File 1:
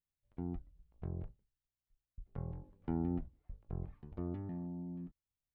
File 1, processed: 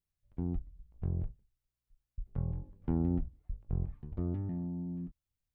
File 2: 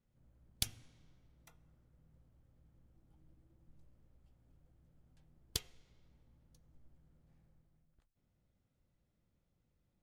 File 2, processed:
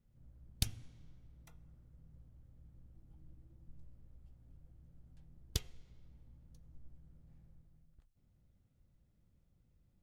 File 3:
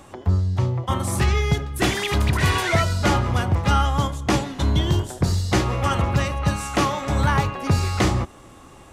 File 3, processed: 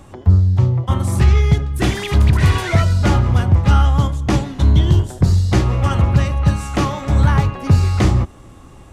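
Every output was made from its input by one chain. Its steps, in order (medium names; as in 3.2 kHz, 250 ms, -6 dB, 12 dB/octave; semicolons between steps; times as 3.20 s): bass shelf 220 Hz +11 dB; loudspeaker Doppler distortion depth 0.11 ms; trim -1 dB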